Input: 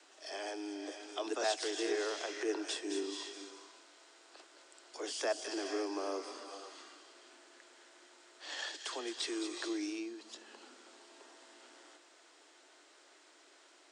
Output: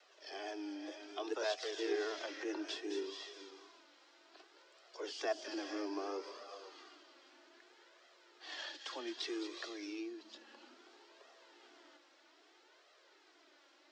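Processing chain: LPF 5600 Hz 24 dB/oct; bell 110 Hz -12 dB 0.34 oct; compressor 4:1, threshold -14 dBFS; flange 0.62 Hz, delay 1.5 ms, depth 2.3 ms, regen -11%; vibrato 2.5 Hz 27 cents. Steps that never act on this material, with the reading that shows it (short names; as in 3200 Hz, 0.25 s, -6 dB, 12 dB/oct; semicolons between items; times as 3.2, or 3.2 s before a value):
bell 110 Hz: input band starts at 210 Hz; compressor, threshold -14 dBFS: input peak -21.5 dBFS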